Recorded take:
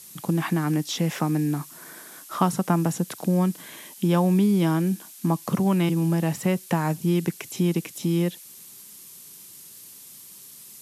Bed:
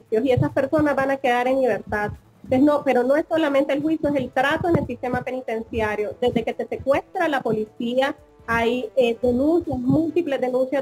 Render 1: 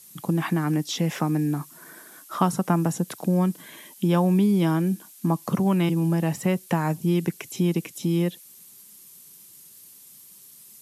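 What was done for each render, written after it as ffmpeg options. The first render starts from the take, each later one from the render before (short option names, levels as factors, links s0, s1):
-af "afftdn=nr=6:nf=-46"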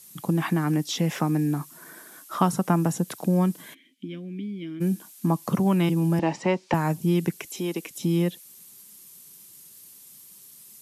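-filter_complex "[0:a]asplit=3[s0][s1][s2];[s0]afade=t=out:st=3.73:d=0.02[s3];[s1]asplit=3[s4][s5][s6];[s4]bandpass=f=270:t=q:w=8,volume=1[s7];[s5]bandpass=f=2290:t=q:w=8,volume=0.501[s8];[s6]bandpass=f=3010:t=q:w=8,volume=0.355[s9];[s7][s8][s9]amix=inputs=3:normalize=0,afade=t=in:st=3.73:d=0.02,afade=t=out:st=4.8:d=0.02[s10];[s2]afade=t=in:st=4.8:d=0.02[s11];[s3][s10][s11]amix=inputs=3:normalize=0,asettb=1/sr,asplit=3[s12][s13][s14];[s12]atrim=end=6.194[s15];[s13]atrim=start=6.19:end=6.74,asetpts=PTS-STARTPTS,afade=t=in:d=0.004:c=qsin,afade=t=out:st=0.546:d=0.004:c=qsin,highpass=220,equalizer=f=330:t=q:w=4:g=5,equalizer=f=590:t=q:w=4:g=3,equalizer=f=910:t=q:w=4:g=10,equalizer=f=2300:t=q:w=4:g=4,equalizer=f=4800:t=q:w=4:g=3,lowpass=f=6100:w=0.5412,lowpass=f=6100:w=1.3066[s16];[s14]atrim=start=6.736[s17];[s15][s16]acrossfade=d=0.004:c1=hsin:c2=qsin[s18];[s18][s17]acrossfade=d=0.004:c1=qsin:c2=hsin,asettb=1/sr,asplit=3[s19][s20][s21];[s19]atrim=end=7.454[s22];[s20]atrim=start=7.45:end=7.91,asetpts=PTS-STARTPTS,afade=t=in:d=0.004:c=qsin,afade=t=out:st=0.456:d=0.004:c=qsin,highpass=330[s23];[s21]atrim=start=7.906[s24];[s22][s23]acrossfade=d=0.004:c1=hsin:c2=qsin[s25];[s25][s24]acrossfade=d=0.004:c1=qsin:c2=hsin"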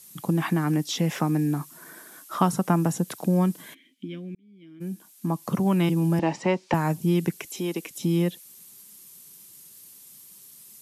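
-filter_complex "[0:a]asplit=2[s0][s1];[s0]atrim=end=4.35,asetpts=PTS-STARTPTS,afade=t=out:st=4.346:d=0.004:c=hsin[s2];[s1]atrim=start=4.35,asetpts=PTS-STARTPTS,afade=t=in:d=1.46[s3];[s2][s3]concat=n=2:v=0:a=1"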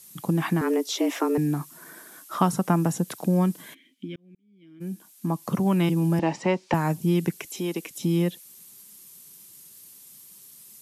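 -filter_complex "[0:a]asettb=1/sr,asplit=3[s0][s1][s2];[s0]atrim=end=0.614[s3];[s1]atrim=start=0.61:end=1.38,asetpts=PTS-STARTPTS,afade=t=in:d=0.004:c=qsin,afade=t=out:st=0.766:d=0.004:c=qsin,afreqshift=130[s4];[s2]atrim=start=1.376[s5];[s3][s4]acrossfade=d=0.004:c1=hsin:c2=qsin[s6];[s6][s5]acrossfade=d=0.004:c1=qsin:c2=hsin,asplit=2[s7][s8];[s7]atrim=end=4.16,asetpts=PTS-STARTPTS,afade=t=out:st=4.156:d=0.004:c=hsin[s9];[s8]atrim=start=4.16,asetpts=PTS-STARTPTS,afade=t=in:d=0.74[s10];[s9][s10]concat=n=2:v=0:a=1"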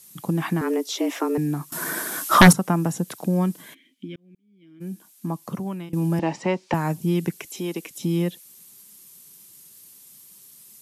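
-filter_complex "[0:a]asettb=1/sr,asplit=3[s0][s1][s2];[s0]atrim=end=1.724[s3];[s1]atrim=start=1.72:end=2.53,asetpts=PTS-STARTPTS,afade=t=in:d=0.004:c=qsin,afade=t=out:st=0.806:d=0.004:c=qsin,aeval=exprs='0.562*sin(PI/2*4.47*val(0)/0.562)':c=same[s4];[s2]atrim=start=2.526[s5];[s3][s4]acrossfade=d=0.004:c1=hsin:c2=qsin[s6];[s6][s5]acrossfade=d=0.004:c1=qsin:c2=hsin,asplit=2[s7][s8];[s7]atrim=end=5.93,asetpts=PTS-STARTPTS,afade=t=out:st=4.88:d=1.05:c=qsin:silence=0.0794328[s9];[s8]atrim=start=5.93,asetpts=PTS-STARTPTS,afade=t=in:d=0.004:c=hsin:silence=0.0794328[s10];[s9][s10]concat=n=2:v=0:a=1"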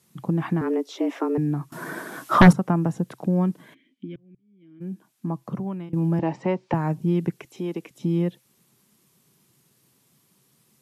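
-af "lowpass=f=1200:p=1,equalizer=f=130:w=7.8:g=7.5"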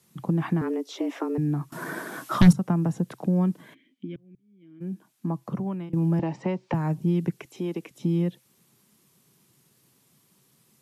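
-filter_complex "[0:a]acrossover=split=230|3000[s0][s1][s2];[s1]acompressor=threshold=0.0398:ratio=6[s3];[s0][s3][s2]amix=inputs=3:normalize=0"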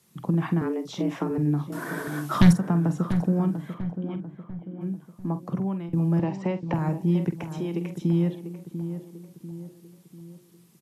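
-filter_complex "[0:a]asplit=2[s0][s1];[s1]adelay=47,volume=0.282[s2];[s0][s2]amix=inputs=2:normalize=0,asplit=2[s3][s4];[s4]adelay=694,lowpass=f=1300:p=1,volume=0.335,asplit=2[s5][s6];[s6]adelay=694,lowpass=f=1300:p=1,volume=0.49,asplit=2[s7][s8];[s8]adelay=694,lowpass=f=1300:p=1,volume=0.49,asplit=2[s9][s10];[s10]adelay=694,lowpass=f=1300:p=1,volume=0.49,asplit=2[s11][s12];[s12]adelay=694,lowpass=f=1300:p=1,volume=0.49[s13];[s5][s7][s9][s11][s13]amix=inputs=5:normalize=0[s14];[s3][s14]amix=inputs=2:normalize=0"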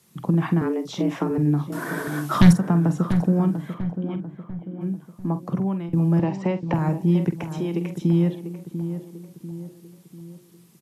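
-af "volume=1.5,alimiter=limit=0.708:level=0:latency=1"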